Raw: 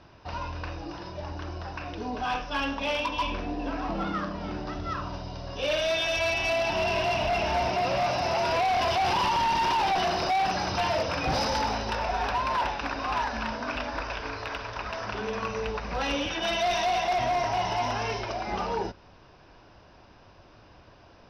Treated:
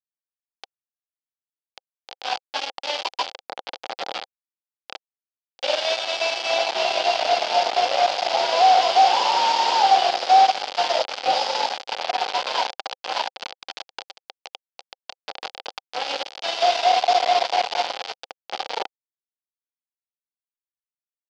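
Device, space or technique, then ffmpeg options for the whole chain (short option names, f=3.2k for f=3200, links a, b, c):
hand-held game console: -af "acrusher=bits=3:mix=0:aa=0.000001,highpass=490,equalizer=f=520:t=q:w=4:g=7,equalizer=f=780:t=q:w=4:g=10,equalizer=f=1.1k:t=q:w=4:g=-3,equalizer=f=1.8k:t=q:w=4:g=-4,equalizer=f=3.2k:t=q:w=4:g=5,equalizer=f=4.7k:t=q:w=4:g=6,lowpass=f=5k:w=0.5412,lowpass=f=5k:w=1.3066"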